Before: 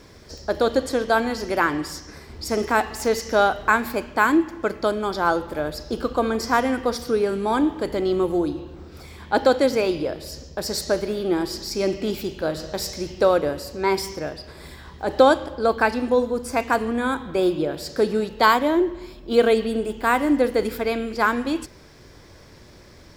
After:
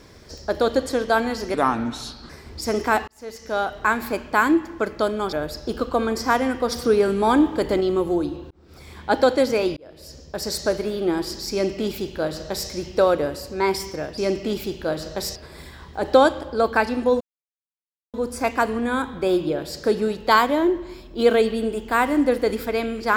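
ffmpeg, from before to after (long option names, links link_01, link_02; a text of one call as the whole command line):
ffmpeg -i in.wav -filter_complex "[0:a]asplit=12[link_01][link_02][link_03][link_04][link_05][link_06][link_07][link_08][link_09][link_10][link_11][link_12];[link_01]atrim=end=1.544[link_13];[link_02]atrim=start=1.54:end=2.13,asetpts=PTS-STARTPTS,asetrate=34398,aresample=44100[link_14];[link_03]atrim=start=2.126:end=2.91,asetpts=PTS-STARTPTS,afade=type=out:start_time=0.78:duration=0.004:curve=hsin[link_15];[link_04]atrim=start=2.91:end=5.162,asetpts=PTS-STARTPTS,afade=type=in:duration=1.01[link_16];[link_05]atrim=start=5.558:end=6.952[link_17];[link_06]atrim=start=6.948:end=8.042,asetpts=PTS-STARTPTS,volume=3.5dB[link_18];[link_07]atrim=start=8.038:end=8.74,asetpts=PTS-STARTPTS,afade=type=out:start_time=0.698:duration=0.004:curve=hsin[link_19];[link_08]atrim=start=8.74:end=10,asetpts=PTS-STARTPTS,afade=type=in:duration=0.41,afade=type=out:start_time=1.256:duration=0.004:curve=hsin[link_20];[link_09]atrim=start=10:end=14.412,asetpts=PTS-STARTPTS,afade=type=in:duration=0.92:curve=qsin[link_21];[link_10]atrim=start=11.748:end=12.932[link_22];[link_11]atrim=start=14.408:end=16.26,asetpts=PTS-STARTPTS,afade=type=out:start_time=1.848:duration=0.004:curve=hsin,apad=pad_dur=0.93[link_23];[link_12]atrim=start=16.26,asetpts=PTS-STARTPTS,afade=type=in:duration=0.004:curve=hsin[link_24];[link_13][link_14]acrossfade=duration=0.004:curve1=hsin:curve2=hsin[link_25];[link_15][link_16]concat=n=2:v=0:a=1[link_26];[link_25][link_26]acrossfade=duration=0.004:curve1=hsin:curve2=hsin[link_27];[link_27][link_17]acrossfade=duration=0.004:curve1=hsin:curve2=hsin[link_28];[link_28][link_18]acrossfade=duration=0.004:curve1=hsin:curve2=hsin[link_29];[link_19][link_20][link_21]concat=n=3:v=0:a=1[link_30];[link_29][link_30]acrossfade=duration=0.004:curve1=hsin:curve2=hsin[link_31];[link_31][link_22]acrossfade=duration=0.004:curve1=hsin:curve2=hsin[link_32];[link_23][link_24]concat=n=2:v=0:a=1[link_33];[link_32][link_33]acrossfade=duration=0.004:curve1=hsin:curve2=hsin" out.wav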